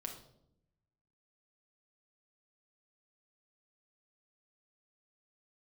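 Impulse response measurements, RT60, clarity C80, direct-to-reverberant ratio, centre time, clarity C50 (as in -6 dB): 0.75 s, 11.0 dB, 1.5 dB, 21 ms, 7.5 dB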